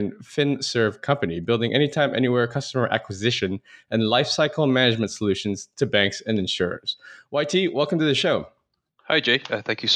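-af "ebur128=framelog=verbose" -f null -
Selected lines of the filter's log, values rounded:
Integrated loudness:
  I:         -22.5 LUFS
  Threshold: -32.7 LUFS
Loudness range:
  LRA:         1.5 LU
  Threshold: -42.7 LUFS
  LRA low:   -23.5 LUFS
  LRA high:  -22.0 LUFS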